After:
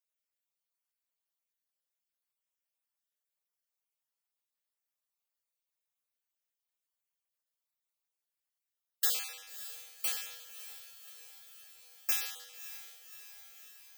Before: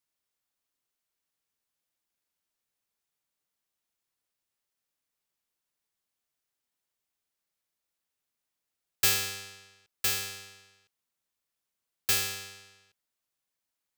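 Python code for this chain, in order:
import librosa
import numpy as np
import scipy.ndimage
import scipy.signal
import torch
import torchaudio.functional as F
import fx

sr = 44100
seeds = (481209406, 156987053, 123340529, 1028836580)

y = fx.spec_dropout(x, sr, seeds[0], share_pct=30)
y = scipy.signal.sosfilt(scipy.signal.cheby1(10, 1.0, 450.0, 'highpass', fs=sr, output='sos'), y)
y = fx.high_shelf(y, sr, hz=11000.0, db=8.0)
y = fx.echo_diffused(y, sr, ms=594, feedback_pct=66, wet_db=-13)
y = F.gain(torch.from_numpy(y), -7.0).numpy()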